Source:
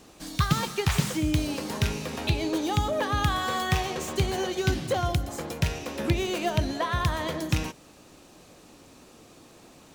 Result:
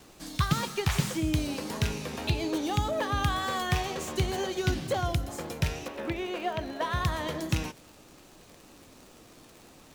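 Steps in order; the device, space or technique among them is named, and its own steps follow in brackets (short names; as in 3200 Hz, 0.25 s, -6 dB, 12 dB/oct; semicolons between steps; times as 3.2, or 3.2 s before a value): 5.88–6.81 tone controls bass -11 dB, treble -15 dB; vinyl LP (wow and flutter; crackle 74/s -38 dBFS; pink noise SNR 30 dB); gain -2.5 dB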